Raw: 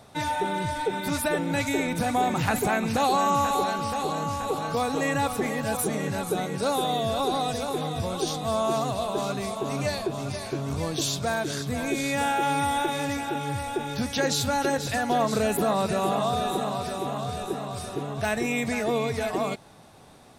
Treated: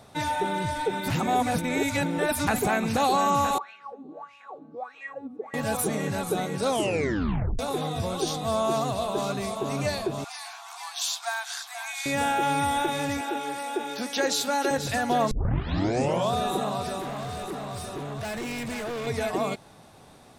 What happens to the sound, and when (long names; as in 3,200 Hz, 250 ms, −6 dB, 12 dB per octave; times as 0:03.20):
0:01.10–0:02.47: reverse
0:03.58–0:05.54: LFO wah 1.6 Hz 240–2,600 Hz, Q 10
0:06.64: tape stop 0.95 s
0:10.24–0:12.06: Chebyshev high-pass filter 700 Hz, order 10
0:13.21–0:14.71: high-pass filter 260 Hz 24 dB per octave
0:15.31: tape start 1.02 s
0:17.00–0:19.07: hard clipping −30.5 dBFS